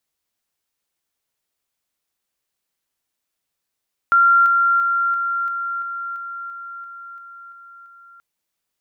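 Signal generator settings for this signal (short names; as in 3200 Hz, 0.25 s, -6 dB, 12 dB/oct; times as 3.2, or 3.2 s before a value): level ladder 1380 Hz -10 dBFS, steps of -3 dB, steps 12, 0.34 s 0.00 s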